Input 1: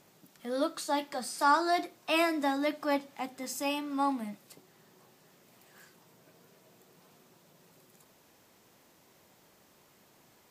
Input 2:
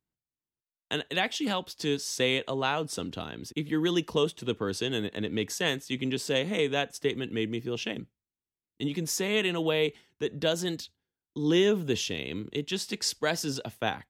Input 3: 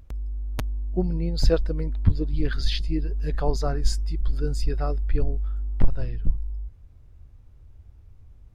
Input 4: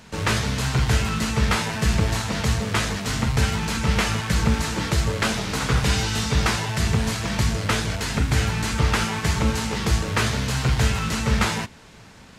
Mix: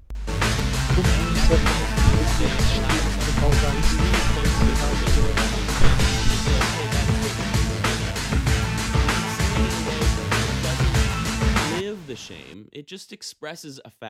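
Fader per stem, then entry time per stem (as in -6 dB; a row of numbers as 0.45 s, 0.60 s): -8.5 dB, -6.0 dB, 0.0 dB, 0.0 dB; 0.55 s, 0.20 s, 0.00 s, 0.15 s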